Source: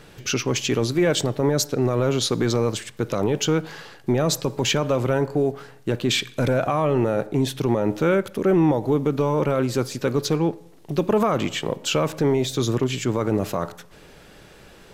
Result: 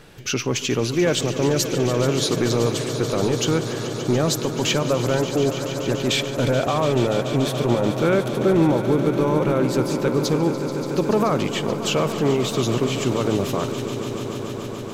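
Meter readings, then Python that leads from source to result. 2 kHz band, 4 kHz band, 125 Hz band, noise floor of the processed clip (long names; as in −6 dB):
+1.5 dB, +1.5 dB, +1.5 dB, −30 dBFS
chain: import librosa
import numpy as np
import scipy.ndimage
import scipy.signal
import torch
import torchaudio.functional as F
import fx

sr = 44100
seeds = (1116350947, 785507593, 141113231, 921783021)

y = fx.echo_swell(x, sr, ms=144, loudest=5, wet_db=-13.5)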